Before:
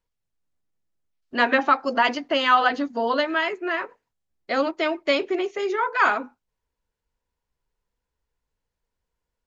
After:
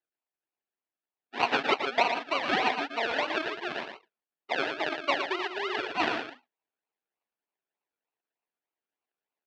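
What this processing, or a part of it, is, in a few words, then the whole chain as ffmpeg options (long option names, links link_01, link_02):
circuit-bent sampling toy: -af "highpass=frequency=150:width=0.5412,highpass=frequency=150:width=1.3066,equalizer=frequency=3200:width_type=o:width=0.31:gain=-5.5,acrusher=samples=36:mix=1:aa=0.000001:lfo=1:lforange=21.6:lforate=3.3,highpass=500,equalizer=frequency=520:width_type=q:width=4:gain=-8,equalizer=frequency=1700:width_type=q:width=4:gain=4,equalizer=frequency=2800:width_type=q:width=4:gain=4,lowpass=frequency=4200:width=0.5412,lowpass=frequency=4200:width=1.3066,aecho=1:1:115:0.447,volume=-3dB"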